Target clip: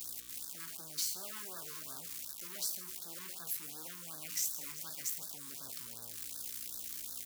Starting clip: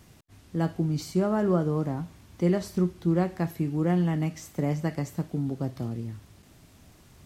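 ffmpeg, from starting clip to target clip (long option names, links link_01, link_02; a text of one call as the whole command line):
ffmpeg -i in.wav -af "aeval=exprs='val(0)+0.00794*(sin(2*PI*60*n/s)+sin(2*PI*2*60*n/s)/2+sin(2*PI*3*60*n/s)/3+sin(2*PI*4*60*n/s)/4+sin(2*PI*5*60*n/s)/5)':channel_layout=same,areverse,acompressor=threshold=-33dB:ratio=16,areverse,acrusher=bits=8:mix=0:aa=0.000001,aeval=exprs='(tanh(141*val(0)+0.35)-tanh(0.35))/141':channel_layout=same,aderivative,aecho=1:1:154:0.158,afftfilt=real='re*(1-between(b*sr/1024,600*pow(2500/600,0.5+0.5*sin(2*PI*2.7*pts/sr))/1.41,600*pow(2500/600,0.5+0.5*sin(2*PI*2.7*pts/sr))*1.41))':imag='im*(1-between(b*sr/1024,600*pow(2500/600,0.5+0.5*sin(2*PI*2.7*pts/sr))/1.41,600*pow(2500/600,0.5+0.5*sin(2*PI*2.7*pts/sr))*1.41))':win_size=1024:overlap=0.75,volume=17dB" out.wav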